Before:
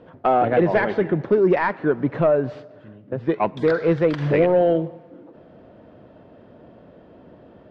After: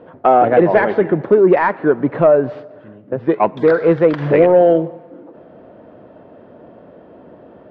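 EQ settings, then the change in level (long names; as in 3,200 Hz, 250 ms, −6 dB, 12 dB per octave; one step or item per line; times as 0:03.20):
low-pass filter 1,300 Hz 6 dB per octave
low-shelf EQ 190 Hz −11.5 dB
+9.0 dB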